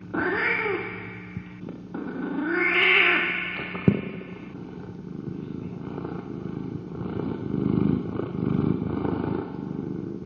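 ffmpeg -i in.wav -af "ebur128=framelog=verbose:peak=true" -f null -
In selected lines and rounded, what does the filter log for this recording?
Integrated loudness:
  I:         -25.6 LUFS
  Threshold: -36.4 LUFS
Loudness range:
  LRA:        11.0 LU
  Threshold: -46.0 LUFS
  LRA low:   -34.2 LUFS
  LRA high:  -23.2 LUFS
True peak:
  Peak:       -5.4 dBFS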